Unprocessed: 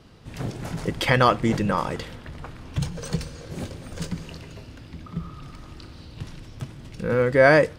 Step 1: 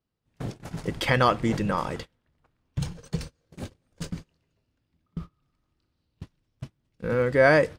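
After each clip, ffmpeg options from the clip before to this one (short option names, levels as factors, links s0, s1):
-af "agate=range=0.0316:threshold=0.0282:ratio=16:detection=peak,volume=0.708"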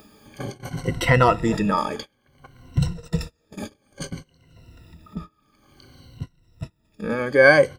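-af "afftfilt=real='re*pow(10,18/40*sin(2*PI*(2*log(max(b,1)*sr/1024/100)/log(2)-(-0.57)*(pts-256)/sr)))':imag='im*pow(10,18/40*sin(2*PI*(2*log(max(b,1)*sr/1024/100)/log(2)-(-0.57)*(pts-256)/sr)))':win_size=1024:overlap=0.75,acompressor=mode=upward:threshold=0.0355:ratio=2.5,volume=1.12"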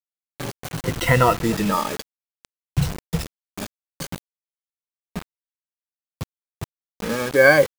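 -af "acrusher=bits=4:mix=0:aa=0.000001"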